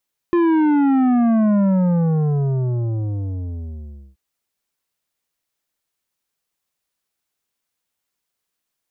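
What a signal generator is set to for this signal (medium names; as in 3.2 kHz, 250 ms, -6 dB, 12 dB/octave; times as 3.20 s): sub drop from 350 Hz, over 3.83 s, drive 10 dB, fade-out 2.61 s, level -14 dB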